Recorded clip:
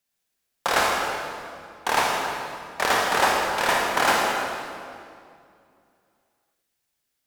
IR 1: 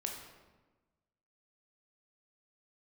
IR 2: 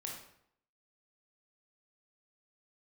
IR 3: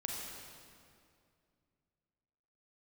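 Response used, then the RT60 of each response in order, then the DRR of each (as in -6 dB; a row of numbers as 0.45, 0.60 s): 3; 1.2, 0.70, 2.4 s; 1.0, -1.5, -1.5 dB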